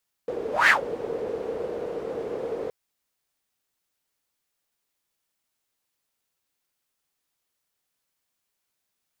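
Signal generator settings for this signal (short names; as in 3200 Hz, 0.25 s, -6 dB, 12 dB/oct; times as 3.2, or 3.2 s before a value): whoosh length 2.42 s, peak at 0.41, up 0.19 s, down 0.13 s, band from 460 Hz, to 1900 Hz, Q 6.8, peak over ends 15.5 dB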